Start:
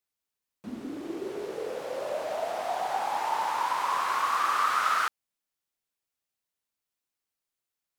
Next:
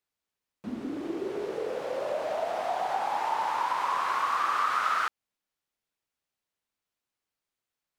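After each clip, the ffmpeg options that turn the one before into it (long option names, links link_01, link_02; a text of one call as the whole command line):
ffmpeg -i in.wav -af "highshelf=frequency=5900:gain=-9,acompressor=threshold=-33dB:ratio=1.5,volume=3dB" out.wav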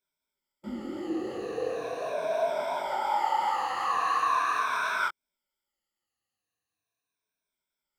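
ffmpeg -i in.wav -af "afftfilt=real='re*pow(10,18/40*sin(2*PI*(1.6*log(max(b,1)*sr/1024/100)/log(2)-(-0.4)*(pts-256)/sr)))':imag='im*pow(10,18/40*sin(2*PI*(1.6*log(max(b,1)*sr/1024/100)/log(2)-(-0.4)*(pts-256)/sr)))':win_size=1024:overlap=0.75,flanger=delay=19:depth=7:speed=2.8" out.wav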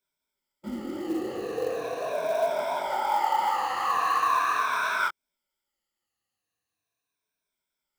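ffmpeg -i in.wav -af "acrusher=bits=6:mode=log:mix=0:aa=0.000001,volume=2dB" out.wav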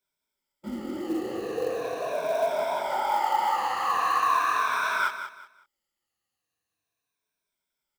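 ffmpeg -i in.wav -af "aecho=1:1:185|370|555:0.316|0.0854|0.0231" out.wav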